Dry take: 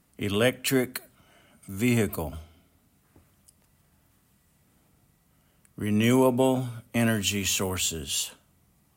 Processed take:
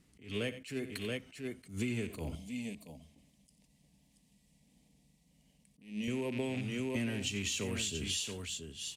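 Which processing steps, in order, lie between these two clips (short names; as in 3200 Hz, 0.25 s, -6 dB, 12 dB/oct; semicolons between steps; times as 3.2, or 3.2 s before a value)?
rattling part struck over -27 dBFS, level -22 dBFS; LPF 7700 Hz 12 dB/oct; band shelf 930 Hz -8 dB; tapped delay 60/90/679 ms -19.5/-17/-11.5 dB; compressor 12:1, threshold -32 dBFS, peak gain reduction 15.5 dB; 2.35–6.08 fixed phaser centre 370 Hz, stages 6; attack slew limiter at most 150 dB/s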